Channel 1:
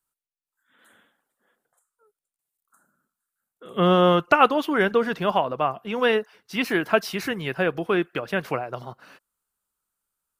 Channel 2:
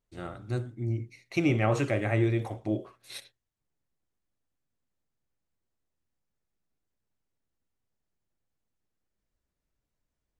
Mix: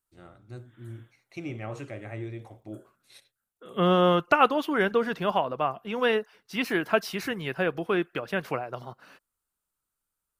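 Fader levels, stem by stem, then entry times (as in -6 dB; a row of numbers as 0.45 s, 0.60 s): -3.5 dB, -11.0 dB; 0.00 s, 0.00 s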